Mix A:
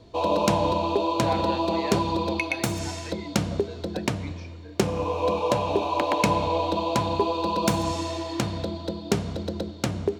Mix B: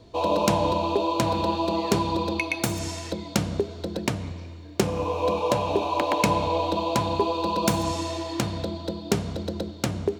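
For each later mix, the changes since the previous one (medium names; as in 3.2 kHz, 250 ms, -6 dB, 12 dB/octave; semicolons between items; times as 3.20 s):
speech -9.0 dB; master: add treble shelf 10 kHz +5.5 dB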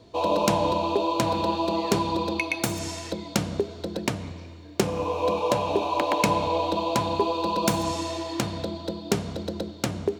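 background: add bass shelf 72 Hz -9.5 dB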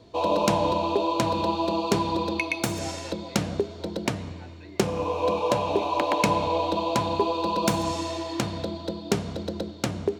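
speech: entry +1.55 s; master: add treble shelf 10 kHz -5.5 dB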